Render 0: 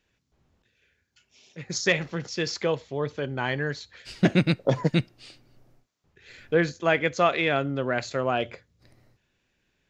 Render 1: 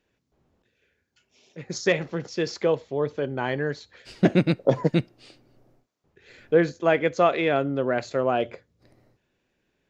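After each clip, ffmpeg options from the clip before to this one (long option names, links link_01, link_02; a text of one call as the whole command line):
ffmpeg -i in.wav -af "equalizer=frequency=430:width=0.44:gain=8.5,volume=-4.5dB" out.wav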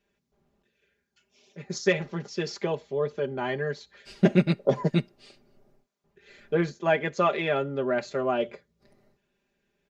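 ffmpeg -i in.wav -af "aecho=1:1:5:0.83,volume=-4.5dB" out.wav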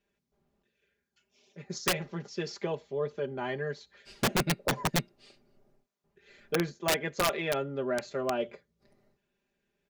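ffmpeg -i in.wav -af "aeval=exprs='(mod(5.62*val(0)+1,2)-1)/5.62':channel_layout=same,volume=-4.5dB" out.wav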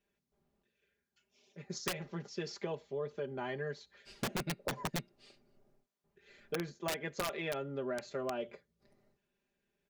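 ffmpeg -i in.wav -af "acompressor=threshold=-30dB:ratio=6,volume=-3.5dB" out.wav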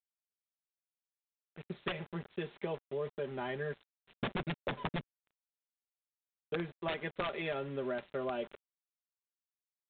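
ffmpeg -i in.wav -af "aeval=exprs='val(0)*gte(abs(val(0)),0.00398)':channel_layout=same,volume=1dB" -ar 8000 -c:a adpcm_g726 -b:a 32k out.wav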